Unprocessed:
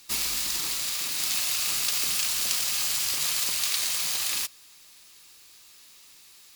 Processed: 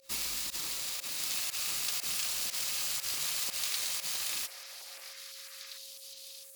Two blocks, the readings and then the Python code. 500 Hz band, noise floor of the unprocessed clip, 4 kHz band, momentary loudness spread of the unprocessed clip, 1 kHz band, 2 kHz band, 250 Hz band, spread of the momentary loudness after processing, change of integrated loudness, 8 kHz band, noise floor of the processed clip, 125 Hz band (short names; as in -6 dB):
-4.5 dB, -53 dBFS, -7.0 dB, 3 LU, -6.5 dB, -7.0 dB, -7.5 dB, 13 LU, -7.5 dB, -7.0 dB, -49 dBFS, -7.5 dB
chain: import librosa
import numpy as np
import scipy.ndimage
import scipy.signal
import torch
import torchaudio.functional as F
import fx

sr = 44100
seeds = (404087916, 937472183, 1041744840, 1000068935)

y = fx.volume_shaper(x, sr, bpm=120, per_beat=1, depth_db=-24, release_ms=73.0, shape='fast start')
y = fx.echo_stepped(y, sr, ms=658, hz=630.0, octaves=1.4, feedback_pct=70, wet_db=-4)
y = y + 10.0 ** (-56.0 / 20.0) * np.sin(2.0 * np.pi * 540.0 * np.arange(len(y)) / sr)
y = y * 10.0 ** (-7.0 / 20.0)